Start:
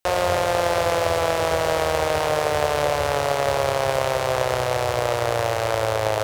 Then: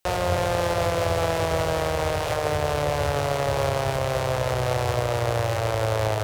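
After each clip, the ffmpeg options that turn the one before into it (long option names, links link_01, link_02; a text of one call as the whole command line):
ffmpeg -i in.wav -filter_complex "[0:a]bandreject=frequency=76.95:width_type=h:width=4,bandreject=frequency=153.9:width_type=h:width=4,bandreject=frequency=230.85:width_type=h:width=4,bandreject=frequency=307.8:width_type=h:width=4,bandreject=frequency=384.75:width_type=h:width=4,bandreject=frequency=461.7:width_type=h:width=4,bandreject=frequency=538.65:width_type=h:width=4,bandreject=frequency=615.6:width_type=h:width=4,bandreject=frequency=692.55:width_type=h:width=4,bandreject=frequency=769.5:width_type=h:width=4,bandreject=frequency=846.45:width_type=h:width=4,bandreject=frequency=923.4:width_type=h:width=4,bandreject=frequency=1000.35:width_type=h:width=4,bandreject=frequency=1077.3:width_type=h:width=4,bandreject=frequency=1154.25:width_type=h:width=4,bandreject=frequency=1231.2:width_type=h:width=4,bandreject=frequency=1308.15:width_type=h:width=4,bandreject=frequency=1385.1:width_type=h:width=4,bandreject=frequency=1462.05:width_type=h:width=4,bandreject=frequency=1539:width_type=h:width=4,bandreject=frequency=1615.95:width_type=h:width=4,bandreject=frequency=1692.9:width_type=h:width=4,bandreject=frequency=1769.85:width_type=h:width=4,bandreject=frequency=1846.8:width_type=h:width=4,bandreject=frequency=1923.75:width_type=h:width=4,bandreject=frequency=2000.7:width_type=h:width=4,bandreject=frequency=2077.65:width_type=h:width=4,bandreject=frequency=2154.6:width_type=h:width=4,bandreject=frequency=2231.55:width_type=h:width=4,bandreject=frequency=2308.5:width_type=h:width=4,acrossover=split=250[link_01][link_02];[link_02]alimiter=limit=-18dB:level=0:latency=1:release=364[link_03];[link_01][link_03]amix=inputs=2:normalize=0,volume=5dB" out.wav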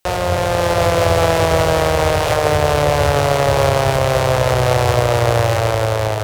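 ffmpeg -i in.wav -af "dynaudnorm=framelen=150:gausssize=9:maxgain=4dB,volume=5.5dB" out.wav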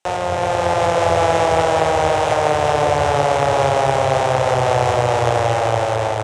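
ffmpeg -i in.wav -filter_complex "[0:a]highpass=110,equalizer=frequency=160:width_type=q:width=4:gain=-3,equalizer=frequency=810:width_type=q:width=4:gain=7,equalizer=frequency=4500:width_type=q:width=4:gain=-6,lowpass=frequency=8900:width=0.5412,lowpass=frequency=8900:width=1.3066,asplit=2[link_01][link_02];[link_02]aecho=0:1:366:0.562[link_03];[link_01][link_03]amix=inputs=2:normalize=0,volume=-3.5dB" out.wav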